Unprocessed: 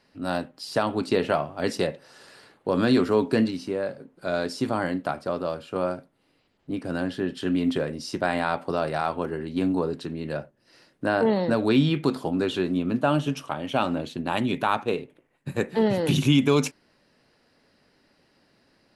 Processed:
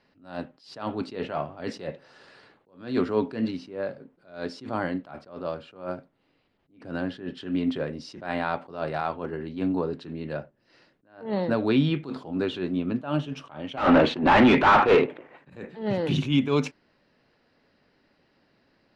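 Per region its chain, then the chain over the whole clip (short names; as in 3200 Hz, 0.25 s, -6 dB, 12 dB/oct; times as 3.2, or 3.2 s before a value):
13.77–15.5 dynamic EQ 1700 Hz, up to +6 dB, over -38 dBFS, Q 0.76 + overdrive pedal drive 33 dB, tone 1200 Hz, clips at -5 dBFS
whole clip: LPF 4000 Hz 12 dB/oct; attack slew limiter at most 140 dB/s; gain -1.5 dB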